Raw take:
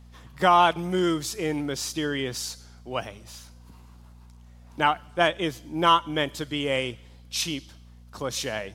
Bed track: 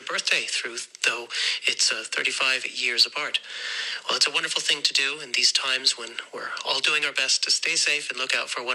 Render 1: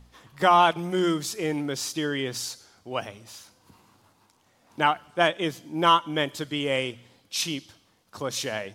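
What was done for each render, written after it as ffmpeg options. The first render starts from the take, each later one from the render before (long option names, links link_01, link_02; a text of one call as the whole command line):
ffmpeg -i in.wav -af "bandreject=frequency=60:width_type=h:width=4,bandreject=frequency=120:width_type=h:width=4,bandreject=frequency=180:width_type=h:width=4,bandreject=frequency=240:width_type=h:width=4" out.wav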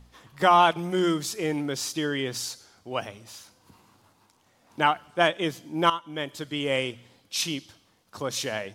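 ffmpeg -i in.wav -filter_complex "[0:a]asplit=2[link_01][link_02];[link_01]atrim=end=5.9,asetpts=PTS-STARTPTS,afade=type=out:start_time=5.896:duration=0.004:curve=hsin:silence=0.211349[link_03];[link_02]atrim=start=5.9,asetpts=PTS-STARTPTS,afade=type=in:duration=0.82:silence=0.211349[link_04];[link_03][link_04]concat=n=2:v=0:a=1" out.wav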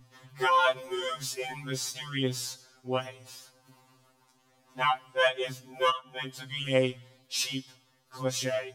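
ffmpeg -i in.wav -af "afftfilt=real='re*2.45*eq(mod(b,6),0)':imag='im*2.45*eq(mod(b,6),0)':win_size=2048:overlap=0.75" out.wav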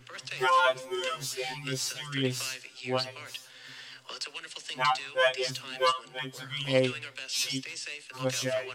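ffmpeg -i in.wav -i bed.wav -filter_complex "[1:a]volume=-16.5dB[link_01];[0:a][link_01]amix=inputs=2:normalize=0" out.wav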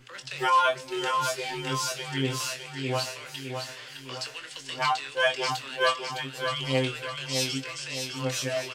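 ffmpeg -i in.wav -filter_complex "[0:a]asplit=2[link_01][link_02];[link_02]adelay=22,volume=-7.5dB[link_03];[link_01][link_03]amix=inputs=2:normalize=0,aecho=1:1:610|1220|1830|2440|3050|3660:0.501|0.236|0.111|0.052|0.0245|0.0115" out.wav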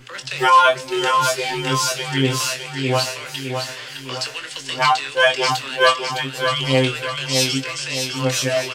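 ffmpeg -i in.wav -af "volume=9.5dB,alimiter=limit=-2dB:level=0:latency=1" out.wav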